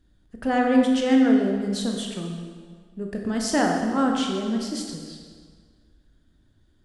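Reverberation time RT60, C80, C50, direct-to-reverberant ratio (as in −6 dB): 1.8 s, 4.5 dB, 3.0 dB, 1.0 dB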